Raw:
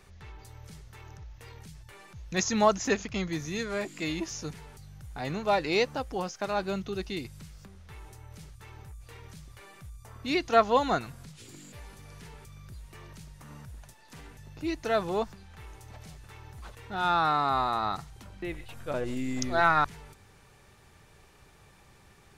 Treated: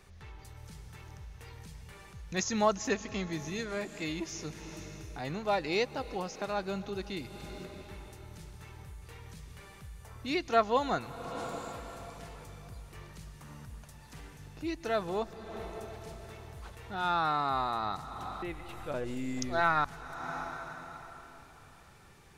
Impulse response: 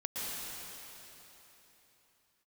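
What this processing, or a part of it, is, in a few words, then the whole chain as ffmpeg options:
ducked reverb: -filter_complex "[0:a]asplit=3[a][b][c];[1:a]atrim=start_sample=2205[d];[b][d]afir=irnorm=-1:irlink=0[e];[c]apad=whole_len=986610[f];[e][f]sidechaincompress=threshold=-43dB:ratio=8:attack=27:release=329,volume=-5.5dB[g];[a][g]amix=inputs=2:normalize=0,volume=-4.5dB"

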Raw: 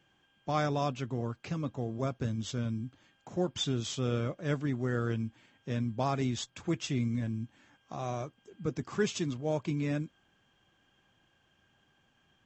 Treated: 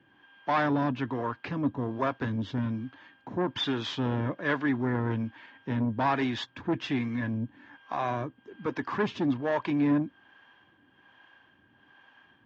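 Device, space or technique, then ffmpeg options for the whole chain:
guitar amplifier with harmonic tremolo: -filter_complex "[0:a]acrossover=split=440[a][b];[a]aeval=exprs='val(0)*(1-0.7/2+0.7/2*cos(2*PI*1.2*n/s))':c=same[c];[b]aeval=exprs='val(0)*(1-0.7/2-0.7/2*cos(2*PI*1.2*n/s))':c=same[d];[c][d]amix=inputs=2:normalize=0,asoftclip=type=tanh:threshold=-32dB,highpass=93,equalizer=f=160:t=q:w=4:g=-6,equalizer=f=280:t=q:w=4:g=8,equalizer=f=970:t=q:w=4:g=10,equalizer=f=1.7k:t=q:w=4:g=10,lowpass=f=4.1k:w=0.5412,lowpass=f=4.1k:w=1.3066,volume=8.5dB"

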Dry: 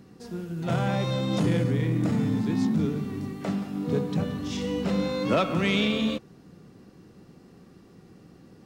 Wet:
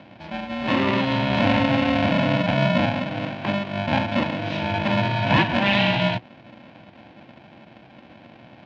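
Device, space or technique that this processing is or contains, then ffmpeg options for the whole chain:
ring modulator pedal into a guitar cabinet: -af "aeval=exprs='val(0)*sgn(sin(2*PI*400*n/s))':c=same,highpass=110,equalizer=f=120:t=q:w=4:g=6,equalizer=f=340:t=q:w=4:g=7,equalizer=f=550:t=q:w=4:g=-6,equalizer=f=1.3k:t=q:w=4:g=-7,equalizer=f=2.6k:t=q:w=4:g=4,lowpass=f=3.6k:w=0.5412,lowpass=f=3.6k:w=1.3066,volume=5.5dB"

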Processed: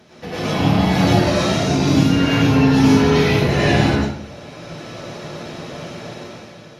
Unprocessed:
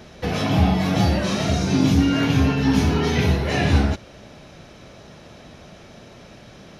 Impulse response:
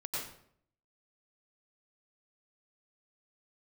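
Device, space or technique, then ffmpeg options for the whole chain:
far-field microphone of a smart speaker: -filter_complex "[1:a]atrim=start_sample=2205[a];[0:a][a]afir=irnorm=-1:irlink=0,highpass=120,dynaudnorm=f=150:g=9:m=11dB,volume=-1dB" -ar 48000 -c:a libopus -b:a 48k

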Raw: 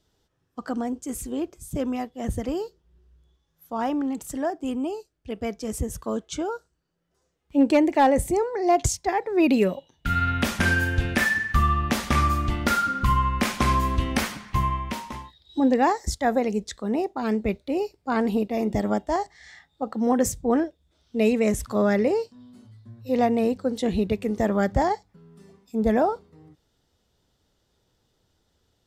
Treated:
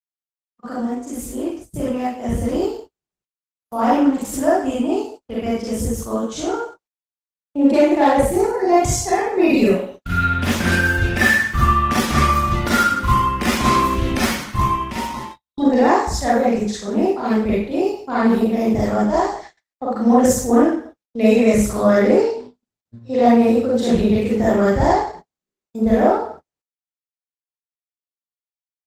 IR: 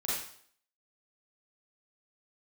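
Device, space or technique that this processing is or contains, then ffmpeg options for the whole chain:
speakerphone in a meeting room: -filter_complex "[0:a]asettb=1/sr,asplit=3[a][b][c];[a]atrim=end=22.174[d];[b]atrim=start=22.17:end=23.21,asetpts=PTS-STARTPTS,afade=t=in:d=0.004:c=qsin,afade=t=out:st=1.036:d=0.004:c=qsin,lowpass=f=7.9k:w=0.5412,lowpass=f=7.9k:w=1.3066[e];[c]atrim=start=23.206[f];[d][e]acrossfade=d=0.004:c1=hsin:c2=qsin[g];[g][f]acrossfade=d=0.004:c1=qsin:c2=hsin[h];[1:a]atrim=start_sample=2205[i];[h][i]afir=irnorm=-1:irlink=0,dynaudnorm=f=270:g=21:m=15dB,agate=range=-51dB:threshold=-32dB:ratio=16:detection=peak,volume=-1.5dB" -ar 48000 -c:a libopus -b:a 16k

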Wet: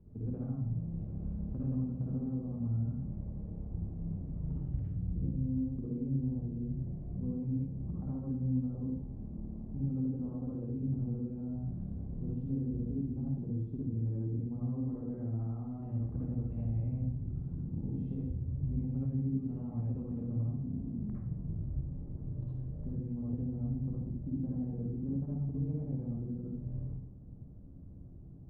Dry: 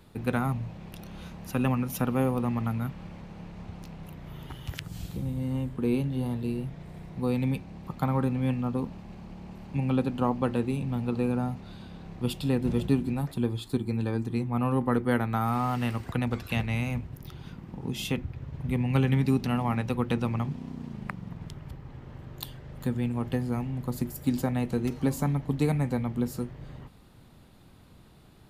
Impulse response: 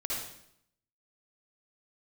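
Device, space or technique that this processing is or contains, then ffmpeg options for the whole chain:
television next door: -filter_complex "[0:a]equalizer=f=640:w=1.5:g=3,acompressor=threshold=-34dB:ratio=6,lowpass=250[a];[1:a]atrim=start_sample=2205[b];[a][b]afir=irnorm=-1:irlink=0"

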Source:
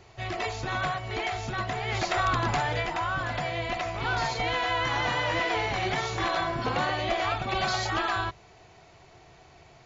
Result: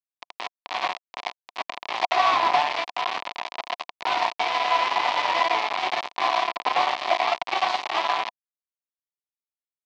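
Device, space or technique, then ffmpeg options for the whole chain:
hand-held game console: -af "acrusher=bits=3:mix=0:aa=0.000001,highpass=430,equalizer=f=480:t=q:w=4:g=-6,equalizer=f=720:t=q:w=4:g=8,equalizer=f=1k:t=q:w=4:g=10,equalizer=f=1.5k:t=q:w=4:g=-7,equalizer=f=2.3k:t=q:w=4:g=3,lowpass=f=4.4k:w=0.5412,lowpass=f=4.4k:w=1.3066,volume=1.5dB"

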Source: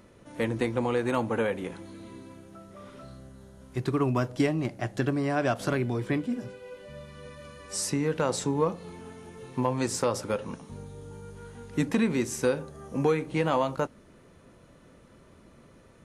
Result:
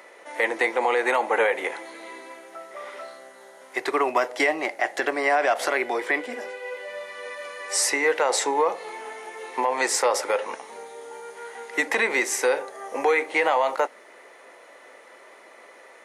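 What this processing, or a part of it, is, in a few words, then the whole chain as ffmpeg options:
laptop speaker: -af "highpass=f=430:w=0.5412,highpass=f=430:w=1.3066,equalizer=f=800:t=o:w=0.52:g=7,equalizer=f=2k:t=o:w=0.37:g=12,alimiter=limit=-20dB:level=0:latency=1:release=45,volume=8.5dB"

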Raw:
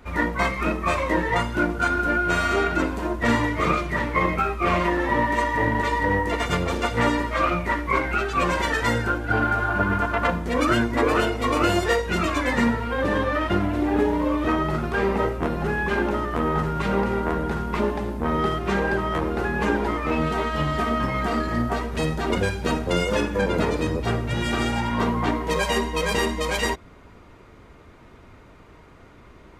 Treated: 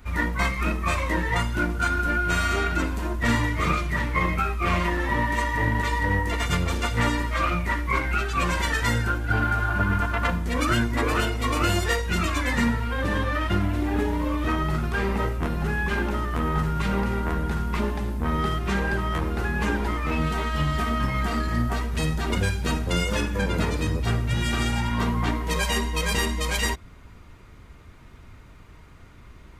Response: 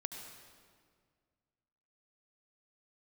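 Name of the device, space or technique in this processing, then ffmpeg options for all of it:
smiley-face EQ: -af "lowshelf=f=140:g=5.5,equalizer=f=490:t=o:w=2.2:g=-7.5,highshelf=f=8.2k:g=6.5"

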